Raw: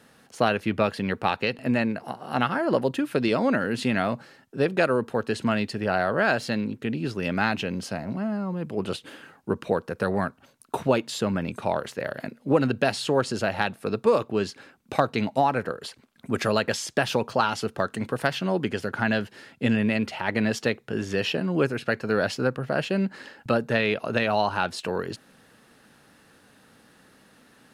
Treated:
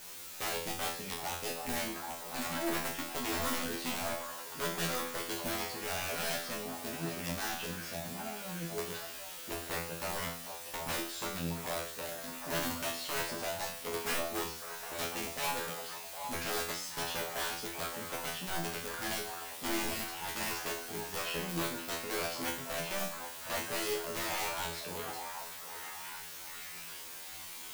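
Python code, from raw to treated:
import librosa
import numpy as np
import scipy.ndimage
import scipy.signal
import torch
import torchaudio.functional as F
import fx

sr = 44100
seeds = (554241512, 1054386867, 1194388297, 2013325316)

p1 = fx.quant_dither(x, sr, seeds[0], bits=6, dither='triangular')
p2 = (np.mod(10.0 ** (17.0 / 20.0) * p1 + 1.0, 2.0) - 1.0) / 10.0 ** (17.0 / 20.0)
p3 = fx.hum_notches(p2, sr, base_hz=50, count=10)
p4 = fx.comb_fb(p3, sr, f0_hz=84.0, decay_s=0.45, harmonics='all', damping=0.0, mix_pct=100)
y = p4 + fx.echo_stepped(p4, sr, ms=767, hz=770.0, octaves=0.7, feedback_pct=70, wet_db=-4.0, dry=0)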